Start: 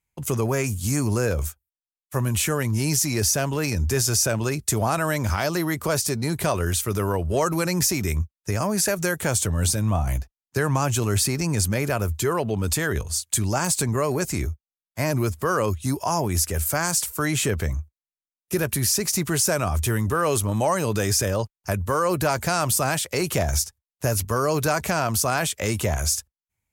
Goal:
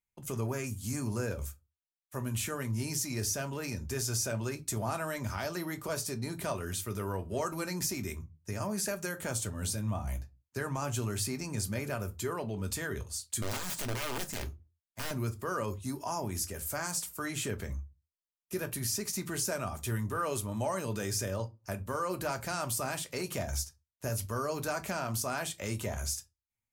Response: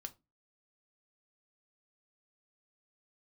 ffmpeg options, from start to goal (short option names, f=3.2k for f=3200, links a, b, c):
-filter_complex "[0:a]asettb=1/sr,asplit=3[a][b][c];[a]atrim=end=13.424[d];[b]atrim=start=13.42:end=15.11,asetpts=PTS-STARTPTS,afade=t=in:d=0.004:c=qsin,afade=t=out:st=1.686:d=0.004:c=qsin,aeval=exprs='(mod(8.41*val(0)+1,2)-1)/8.41':c=same[e];[c]atrim=start=15.106[f];[d][e]acrossfade=d=0.004:c1=hsin:c2=qsin[g];[g][f]acrossfade=d=0.004:c1=qsin:c2=hsin[h];[1:a]atrim=start_sample=2205[i];[h][i]afir=irnorm=-1:irlink=0,volume=-7dB"